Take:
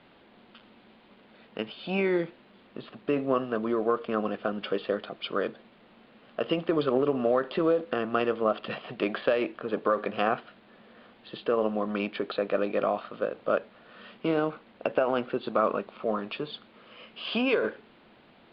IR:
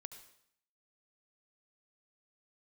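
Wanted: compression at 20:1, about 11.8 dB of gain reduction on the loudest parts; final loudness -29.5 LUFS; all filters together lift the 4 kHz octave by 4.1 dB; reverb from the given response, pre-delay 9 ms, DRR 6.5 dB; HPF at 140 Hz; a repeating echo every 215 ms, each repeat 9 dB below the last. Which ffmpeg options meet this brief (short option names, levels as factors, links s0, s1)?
-filter_complex "[0:a]highpass=140,equalizer=f=4000:t=o:g=6,acompressor=threshold=0.0282:ratio=20,aecho=1:1:215|430|645|860:0.355|0.124|0.0435|0.0152,asplit=2[s0][s1];[1:a]atrim=start_sample=2205,adelay=9[s2];[s1][s2]afir=irnorm=-1:irlink=0,volume=0.841[s3];[s0][s3]amix=inputs=2:normalize=0,volume=2.24"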